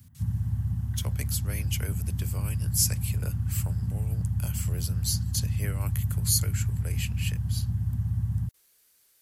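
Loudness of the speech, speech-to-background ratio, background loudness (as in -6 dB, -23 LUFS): -33.0 LUFS, -3.0 dB, -30.0 LUFS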